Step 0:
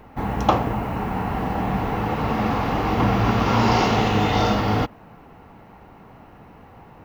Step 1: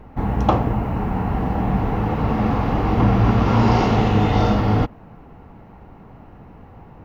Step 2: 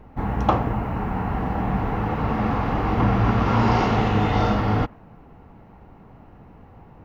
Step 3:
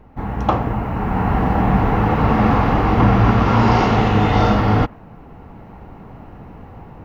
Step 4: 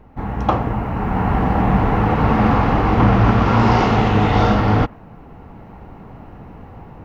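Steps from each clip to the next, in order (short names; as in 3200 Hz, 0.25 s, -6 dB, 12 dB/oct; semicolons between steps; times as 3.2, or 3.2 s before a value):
tilt -2 dB/oct; gain -1 dB
dynamic EQ 1500 Hz, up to +5 dB, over -37 dBFS, Q 0.8; gain -4 dB
AGC gain up to 9 dB
Doppler distortion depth 0.17 ms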